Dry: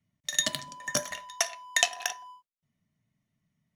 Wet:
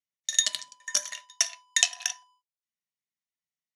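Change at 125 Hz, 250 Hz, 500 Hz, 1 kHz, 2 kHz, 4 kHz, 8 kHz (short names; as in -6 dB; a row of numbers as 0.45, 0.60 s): under -20 dB, under -15 dB, -11.5 dB, -9.5 dB, -2.0 dB, +2.5 dB, +4.5 dB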